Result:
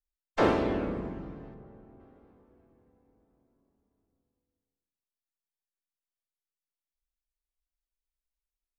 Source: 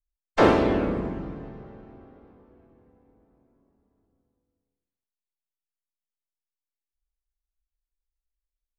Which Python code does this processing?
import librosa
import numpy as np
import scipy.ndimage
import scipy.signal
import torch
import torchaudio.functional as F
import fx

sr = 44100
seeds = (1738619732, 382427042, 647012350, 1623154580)

y = fx.high_shelf(x, sr, hz=2200.0, db=-11.0, at=(1.54, 2.0))
y = F.gain(torch.from_numpy(y), -6.5).numpy()